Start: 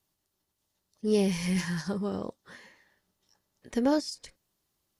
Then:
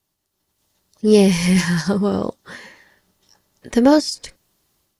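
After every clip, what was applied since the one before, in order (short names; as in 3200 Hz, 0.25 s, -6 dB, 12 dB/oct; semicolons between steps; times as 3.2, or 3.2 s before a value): AGC gain up to 9.5 dB; gain +3.5 dB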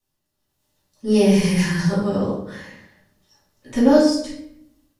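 shoebox room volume 160 m³, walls mixed, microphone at 2.5 m; gain -11.5 dB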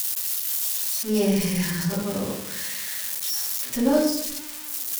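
switching spikes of -13 dBFS; gain -6.5 dB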